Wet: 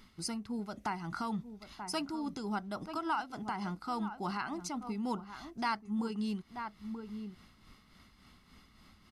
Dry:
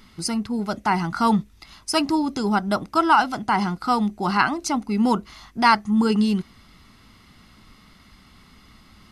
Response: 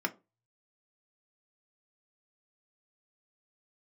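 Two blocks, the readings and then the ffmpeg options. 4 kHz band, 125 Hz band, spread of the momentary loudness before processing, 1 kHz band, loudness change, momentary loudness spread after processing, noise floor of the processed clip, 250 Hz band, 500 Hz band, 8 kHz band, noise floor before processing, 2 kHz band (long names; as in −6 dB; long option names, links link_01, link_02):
−15.0 dB, −14.5 dB, 8 LU, −16.5 dB, −16.5 dB, 9 LU, −63 dBFS, −15.0 dB, −15.5 dB, −13.0 dB, −53 dBFS, −17.0 dB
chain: -filter_complex "[0:a]tremolo=f=3.5:d=0.53,asplit=2[link_01][link_02];[link_02]adelay=932.9,volume=-13dB,highshelf=frequency=4000:gain=-21[link_03];[link_01][link_03]amix=inputs=2:normalize=0,acompressor=threshold=-30dB:ratio=2,volume=-7.5dB"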